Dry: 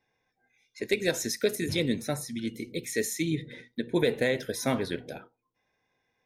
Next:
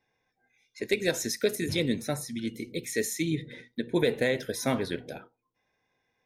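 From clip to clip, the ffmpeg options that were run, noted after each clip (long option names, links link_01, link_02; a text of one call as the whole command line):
ffmpeg -i in.wav -af anull out.wav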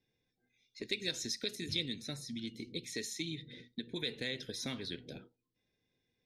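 ffmpeg -i in.wav -filter_complex "[0:a]acrossover=split=480[link_01][link_02];[link_01]acompressor=threshold=-40dB:ratio=6[link_03];[link_02]bandpass=frequency=4000:width_type=q:width=2:csg=0[link_04];[link_03][link_04]amix=inputs=2:normalize=0" out.wav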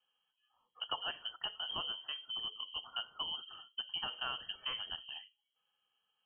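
ffmpeg -i in.wav -af "lowpass=frequency=2800:width_type=q:width=0.5098,lowpass=frequency=2800:width_type=q:width=0.6013,lowpass=frequency=2800:width_type=q:width=0.9,lowpass=frequency=2800:width_type=q:width=2.563,afreqshift=-3300,volume=1dB" out.wav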